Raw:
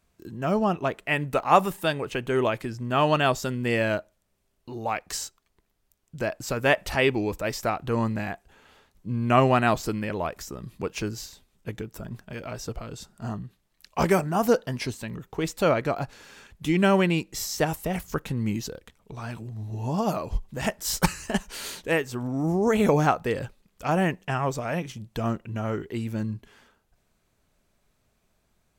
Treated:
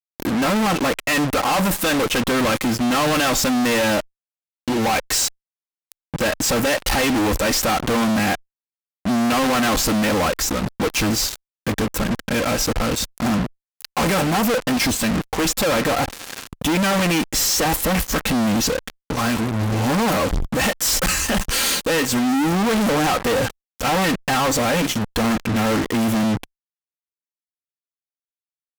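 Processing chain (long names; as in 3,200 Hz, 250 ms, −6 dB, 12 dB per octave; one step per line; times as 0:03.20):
comb filter 3.8 ms, depth 64%
in parallel at +1.5 dB: brickwall limiter −14.5 dBFS, peak gain reduction 11 dB
on the sum: leveller curve on the samples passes 1
fuzz pedal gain 36 dB, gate −33 dBFS
harmonic generator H 5 −15 dB, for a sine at −8.5 dBFS
level −4.5 dB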